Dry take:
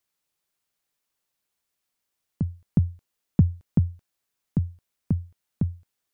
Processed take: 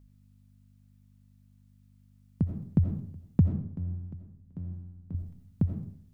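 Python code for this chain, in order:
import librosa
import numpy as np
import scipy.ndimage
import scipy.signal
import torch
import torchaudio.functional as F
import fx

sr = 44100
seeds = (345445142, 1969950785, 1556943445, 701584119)

p1 = fx.highpass(x, sr, hz=44.0, slope=6)
p2 = fx.level_steps(p1, sr, step_db=13)
p3 = p1 + (p2 * librosa.db_to_amplitude(3.0))
p4 = fx.comb_fb(p3, sr, f0_hz=89.0, decay_s=1.1, harmonics='all', damping=0.0, mix_pct=90, at=(3.49, 5.15))
p5 = fx.add_hum(p4, sr, base_hz=50, snr_db=23)
p6 = p5 + fx.echo_single(p5, sr, ms=734, db=-22.0, dry=0)
p7 = fx.rev_freeverb(p6, sr, rt60_s=0.61, hf_ratio=0.65, predelay_ms=45, drr_db=4.5)
y = p7 * librosa.db_to_amplitude(-6.0)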